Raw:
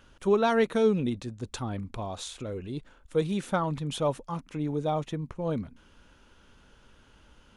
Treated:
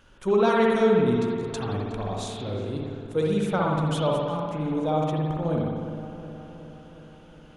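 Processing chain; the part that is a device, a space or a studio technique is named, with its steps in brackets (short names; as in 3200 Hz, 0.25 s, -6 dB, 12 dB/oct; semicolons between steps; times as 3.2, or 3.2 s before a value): dub delay into a spring reverb (darkening echo 0.366 s, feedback 66%, low-pass 2500 Hz, level -12.5 dB; spring tank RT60 1.4 s, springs 58 ms, chirp 30 ms, DRR -2 dB)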